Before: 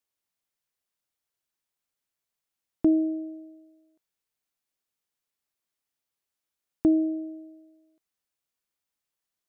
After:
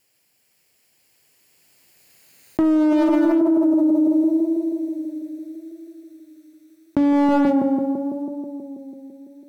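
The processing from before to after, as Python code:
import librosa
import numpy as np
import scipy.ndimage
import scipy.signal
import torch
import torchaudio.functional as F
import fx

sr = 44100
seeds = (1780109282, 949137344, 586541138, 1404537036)

y = fx.lower_of_two(x, sr, delay_ms=0.45)
y = fx.doppler_pass(y, sr, speed_mps=38, closest_m=24.0, pass_at_s=2.63)
y = scipy.signal.sosfilt(scipy.signal.butter(2, 78.0, 'highpass', fs=sr, output='sos'), y)
y = fx.hum_notches(y, sr, base_hz=50, count=6)
y = fx.leveller(y, sr, passes=2)
y = fx.echo_tape(y, sr, ms=164, feedback_pct=87, wet_db=-17.0, lp_hz=1000.0, drive_db=14.0, wow_cents=39)
y = fx.env_flatten(y, sr, amount_pct=100)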